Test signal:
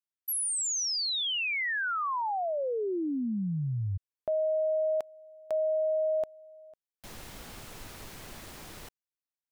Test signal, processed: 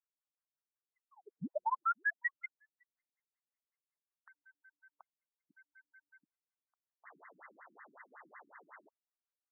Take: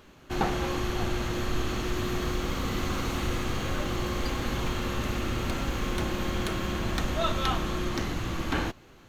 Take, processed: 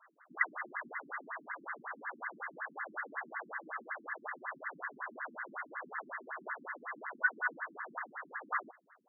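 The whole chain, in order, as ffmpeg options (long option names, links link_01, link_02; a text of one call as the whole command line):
ffmpeg -i in.wav -af "aeval=exprs='0.266*(cos(1*acos(clip(val(0)/0.266,-1,1)))-cos(1*PI/2))+0.00188*(cos(3*acos(clip(val(0)/0.266,-1,1)))-cos(3*PI/2))+0.00596*(cos(4*acos(clip(val(0)/0.266,-1,1)))-cos(4*PI/2))':channel_layout=same,lowpass=frequency=2400:width_type=q:width=0.5098,lowpass=frequency=2400:width_type=q:width=0.6013,lowpass=frequency=2400:width_type=q:width=0.9,lowpass=frequency=2400:width_type=q:width=2.563,afreqshift=-2800,afftfilt=real='re*between(b*sr/1024,230*pow(1500/230,0.5+0.5*sin(2*PI*5.4*pts/sr))/1.41,230*pow(1500/230,0.5+0.5*sin(2*PI*5.4*pts/sr))*1.41)':imag='im*between(b*sr/1024,230*pow(1500/230,0.5+0.5*sin(2*PI*5.4*pts/sr))/1.41,230*pow(1500/230,0.5+0.5*sin(2*PI*5.4*pts/sr))*1.41)':win_size=1024:overlap=0.75,volume=2dB" out.wav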